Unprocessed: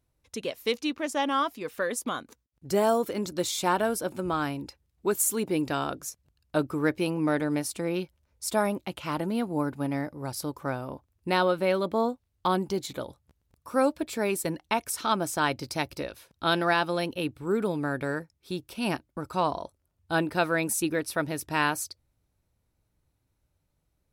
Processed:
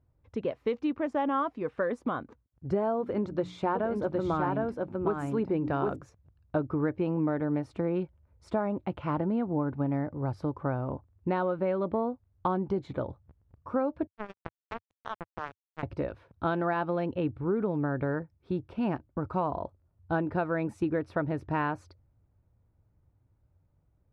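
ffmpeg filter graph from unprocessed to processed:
ffmpeg -i in.wav -filter_complex "[0:a]asettb=1/sr,asplit=3[link_01][link_02][link_03];[link_01]atrim=end=2.994[link_04];[link_02]atrim=start=2.99:end=5.96,asetpts=PTS-STARTPTS,afade=type=in:duration=0.004:curve=qsin,afade=type=out:start_time=2.966:duration=0.004:curve=qsin,bandreject=frequency=60:width_type=h:width=6,bandreject=frequency=120:width_type=h:width=6,bandreject=frequency=180:width_type=h:width=6,bandreject=frequency=240:width_type=h:width=6,bandreject=frequency=300:width_type=h:width=6,aecho=1:1:761:0.668,atrim=end_sample=130977[link_05];[link_03]atrim=start=5.956[link_06];[link_04][link_05]acrossfade=duration=0.004:curve1=hsin:curve2=qsin[link_07];[link_07][link_06]acrossfade=duration=0.004:curve1=qsin:curve2=hsin,asettb=1/sr,asplit=3[link_08][link_09][link_10];[link_08]atrim=end=14.074[link_11];[link_09]atrim=start=14.07:end=15.83,asetpts=PTS-STARTPTS,afade=type=in:duration=0.004:curve=qsin,afade=type=out:start_time=1.756:duration=0.004:curve=qsin,acrusher=bits=2:mix=0:aa=0.5,acompressor=threshold=-32dB:ratio=3:attack=3.2:release=140:knee=1:detection=peak[link_12];[link_10]atrim=start=15.826[link_13];[link_11][link_12]acrossfade=duration=0.004:curve1=hsin:curve2=qsin[link_14];[link_14][link_13]acrossfade=duration=0.004:curve1=qsin:curve2=hsin,lowpass=1300,equalizer=frequency=96:width_type=o:width=1:gain=8.5,acompressor=threshold=-27dB:ratio=6,volume=2.5dB" out.wav

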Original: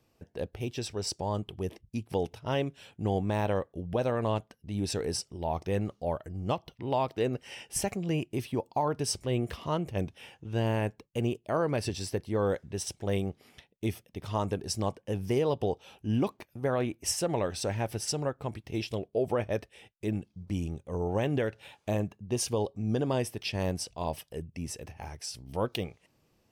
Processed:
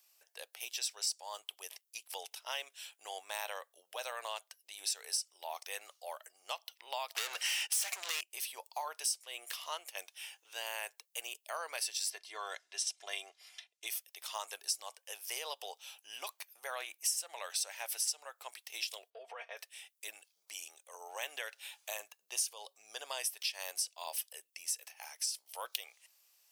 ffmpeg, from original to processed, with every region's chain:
ffmpeg -i in.wav -filter_complex "[0:a]asettb=1/sr,asplit=3[link_01][link_02][link_03];[link_01]atrim=end=7.154[link_04];[link_02]atrim=start=7.15:end=8.21,asetpts=PTS-STARTPTS,afade=type=in:duration=0.004:curve=qsin,afade=type=out:start_time=1.056:duration=0.004:curve=qsin,agate=range=-19dB:threshold=-54dB:ratio=16:release=100:detection=peak,acompressor=mode=upward:threshold=-50dB:ratio=2.5:attack=3.2:release=140:knee=2.83:detection=peak,asplit=2[link_05][link_06];[link_06]highpass=frequency=720:poles=1,volume=31dB,asoftclip=type=tanh:threshold=-17dB[link_07];[link_05][link_07]amix=inputs=2:normalize=0,lowpass=frequency=4100:poles=1,volume=-6dB[link_08];[link_03]atrim=start=8.206[link_09];[link_04][link_08]acrossfade=duration=0.004:curve1=hsin:curve2=qsin[link_10];[link_10][link_09]acrossfade=duration=0.004:curve1=qsin:curve2=hsin,asettb=1/sr,asplit=3[link_11][link_12][link_13];[link_11]atrim=end=12.104[link_14];[link_12]atrim=start=12.1:end=13.87,asetpts=PTS-STARTPTS,afade=type=in:duration=0.004:curve=qsin,afade=type=out:start_time=1.766:duration=0.004:curve=qsin,lowpass=6500,aecho=1:1:2.9:0.63,atrim=end_sample=78057[link_15];[link_13]atrim=start=13.866[link_16];[link_14][link_15]acrossfade=duration=0.004:curve1=hsin:curve2=qsin[link_17];[link_17][link_16]acrossfade=duration=0.004:curve1=qsin:curve2=hsin,asettb=1/sr,asplit=3[link_18][link_19][link_20];[link_18]atrim=end=19.104[link_21];[link_19]atrim=start=19.1:end=19.57,asetpts=PTS-STARTPTS,afade=type=in:duration=0.004:curve=qsin,afade=type=out:start_time=0.466:duration=0.004:curve=qsin,aecho=1:1:4.3:0.82,atrim=end_sample=20727,acompressor=threshold=-28dB:ratio=6:attack=3.2:release=140:knee=1:detection=peak,highpass=130,lowpass=2600[link_22];[link_20]atrim=start=19.566[link_23];[link_21][link_22]acrossfade=duration=0.004:curve1=hsin:curve2=qsin[link_24];[link_24][link_23]acrossfade=duration=0.004:curve1=qsin:curve2=hsin,highpass=frequency=590:width=0.5412,highpass=frequency=590:width=1.3066,aderivative,acompressor=threshold=-44dB:ratio=4,volume=10.5dB" out.wav

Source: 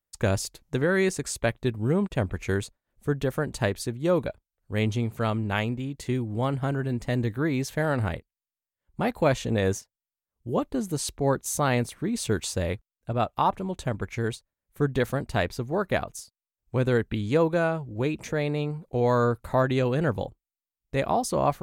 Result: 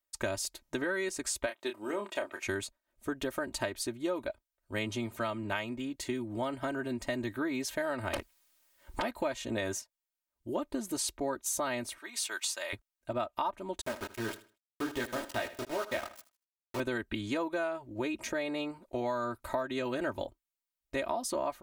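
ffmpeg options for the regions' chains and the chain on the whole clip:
ffmpeg -i in.wav -filter_complex "[0:a]asettb=1/sr,asplit=3[link_01][link_02][link_03];[link_01]atrim=end=1.464[link_04];[link_02]atrim=start=1.46:end=2.47,asetpts=PTS-STARTPTS,afade=type=in:duration=0.004:curve=qsin,afade=type=out:start_time=1.006:duration=0.004:curve=qsin,highpass=420,asplit=2[link_05][link_06];[link_06]adelay=29,volume=-7.5dB[link_07];[link_05][link_07]amix=inputs=2:normalize=0,atrim=end_sample=44541[link_08];[link_03]atrim=start=2.466[link_09];[link_04][link_08]acrossfade=duration=0.004:curve1=hsin:curve2=qsin[link_10];[link_10][link_09]acrossfade=duration=0.004:curve1=qsin:curve2=hsin,asettb=1/sr,asplit=3[link_11][link_12][link_13];[link_11]atrim=end=8.134[link_14];[link_12]atrim=start=8.13:end=9.02,asetpts=PTS-STARTPTS,afade=type=in:duration=0.004:curve=qsin,afade=type=out:start_time=0.886:duration=0.004:curve=qsin,acompressor=threshold=-34dB:ratio=6:attack=3.2:release=140:knee=1:detection=peak,aeval=exprs='0.0794*sin(PI/2*8.91*val(0)/0.0794)':channel_layout=same[link_15];[link_13]atrim=start=9.016[link_16];[link_14][link_15]acrossfade=duration=0.004:curve1=hsin:curve2=qsin[link_17];[link_17][link_16]acrossfade=duration=0.004:curve1=qsin:curve2=hsin,asettb=1/sr,asplit=3[link_18][link_19][link_20];[link_18]atrim=end=11.984[link_21];[link_19]atrim=start=11.98:end=12.73,asetpts=PTS-STARTPTS,afade=type=in:duration=0.004:curve=qsin,afade=type=out:start_time=0.746:duration=0.004:curve=qsin,highpass=1000,acompressor=mode=upward:threshold=-57dB:ratio=2.5:attack=3.2:release=140:knee=2.83:detection=peak[link_22];[link_20]atrim=start=12.726[link_23];[link_21][link_22]acrossfade=duration=0.004:curve1=hsin:curve2=qsin[link_24];[link_24][link_23]acrossfade=duration=0.004:curve1=qsin:curve2=hsin,asettb=1/sr,asplit=3[link_25][link_26][link_27];[link_25]atrim=end=13.814[link_28];[link_26]atrim=start=13.81:end=16.8,asetpts=PTS-STARTPTS,afade=type=in:duration=0.004:curve=qsin,afade=type=out:start_time=2.986:duration=0.004:curve=qsin,flanger=delay=17:depth=8:speed=2.5,aeval=exprs='val(0)*gte(abs(val(0)),0.0224)':channel_layout=same,aecho=1:1:78|156|234:0.15|0.0389|0.0101,atrim=end_sample=131859[link_29];[link_27]atrim=start=16.796[link_30];[link_28][link_29]acrossfade=duration=0.004:curve1=hsin:curve2=qsin[link_31];[link_31][link_30]acrossfade=duration=0.004:curve1=qsin:curve2=hsin,lowshelf=frequency=260:gain=-11.5,aecho=1:1:3.2:0.81,acompressor=threshold=-29dB:ratio=6,volume=-1dB" out.wav

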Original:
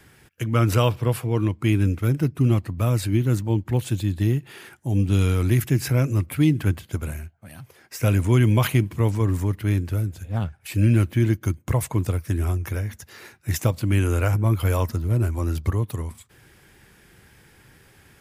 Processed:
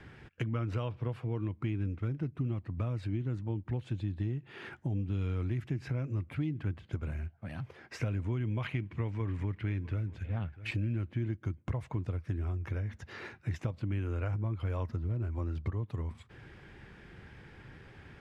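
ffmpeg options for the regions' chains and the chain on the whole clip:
ffmpeg -i in.wav -filter_complex "[0:a]asettb=1/sr,asplit=3[link_01][link_02][link_03];[link_01]atrim=end=8.604[link_04];[link_02]atrim=start=8.6:end=10.71,asetpts=PTS-STARTPTS,afade=type=in:duration=0.004:curve=qsin,afade=type=out:start_time=2.106:duration=0.004:curve=qsin,equalizer=frequency=2200:width_type=o:width=1.2:gain=7,aecho=1:1:648:0.075,atrim=end_sample=93051[link_05];[link_03]atrim=start=10.706[link_06];[link_04][link_05]acrossfade=duration=0.004:curve1=hsin:curve2=qsin[link_07];[link_07][link_06]acrossfade=duration=0.004:curve1=qsin:curve2=hsin,lowpass=3000,lowshelf=frequency=320:gain=3,acompressor=threshold=-33dB:ratio=5" out.wav

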